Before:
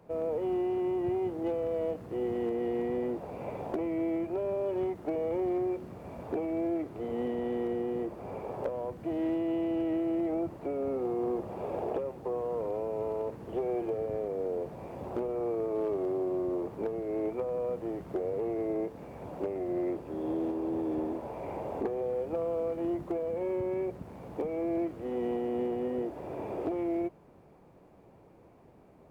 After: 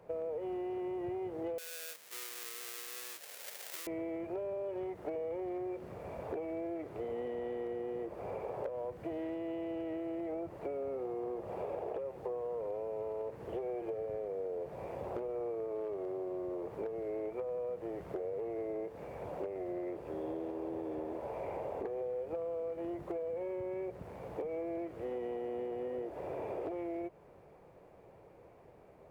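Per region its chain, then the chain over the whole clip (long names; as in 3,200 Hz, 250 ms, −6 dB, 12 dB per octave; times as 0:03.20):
0:01.58–0:03.87: each half-wave held at its own peak + high-pass filter 140 Hz 24 dB per octave + first difference
whole clip: graphic EQ with 10 bands 250 Hz −7 dB, 500 Hz +6 dB, 2,000 Hz +4 dB; downward compressor, threshold −34 dBFS; level −2 dB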